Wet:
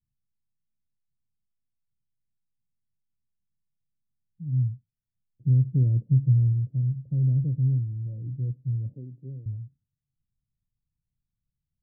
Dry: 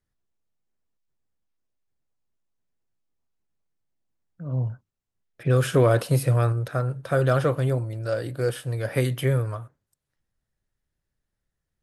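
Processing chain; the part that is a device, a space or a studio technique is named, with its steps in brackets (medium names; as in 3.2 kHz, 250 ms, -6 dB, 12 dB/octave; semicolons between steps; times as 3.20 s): 8.93–9.46 s: high-pass 350 Hz 12 dB/octave; the neighbour's flat through the wall (low-pass 230 Hz 24 dB/octave; peaking EQ 130 Hz +5.5 dB 0.73 oct); trim -3.5 dB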